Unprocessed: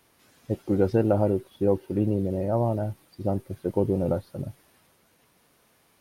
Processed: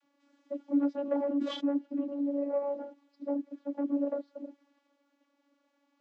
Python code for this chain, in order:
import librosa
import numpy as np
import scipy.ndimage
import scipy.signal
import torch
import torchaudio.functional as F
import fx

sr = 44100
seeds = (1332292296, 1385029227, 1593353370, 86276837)

y = fx.tube_stage(x, sr, drive_db=16.0, bias=0.45)
y = fx.vocoder(y, sr, bands=32, carrier='saw', carrier_hz=283.0)
y = fx.sustainer(y, sr, db_per_s=65.0, at=(1.05, 1.67))
y = y * 10.0 ** (-4.0 / 20.0)